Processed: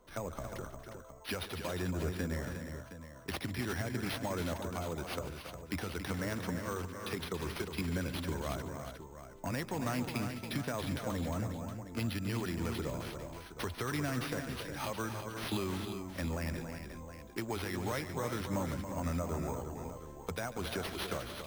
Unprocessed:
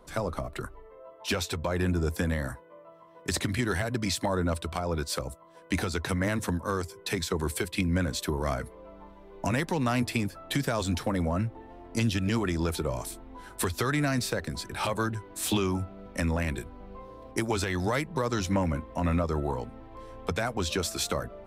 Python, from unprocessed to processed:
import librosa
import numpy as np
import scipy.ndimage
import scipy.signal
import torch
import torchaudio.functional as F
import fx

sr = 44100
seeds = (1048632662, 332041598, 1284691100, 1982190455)

y = np.repeat(x[::6], 6)[:len(x)]
y = fx.echo_multitap(y, sr, ms=(144, 278, 357, 716), db=(-15.5, -8.5, -8.0, -12.0))
y = F.gain(torch.from_numpy(y), -9.0).numpy()